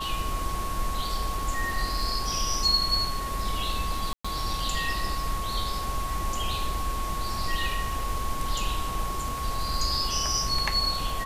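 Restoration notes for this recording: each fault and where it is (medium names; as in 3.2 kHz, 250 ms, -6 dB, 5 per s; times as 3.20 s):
crackle 26 per s -34 dBFS
whine 1.1 kHz -32 dBFS
4.13–4.25 s: dropout 115 ms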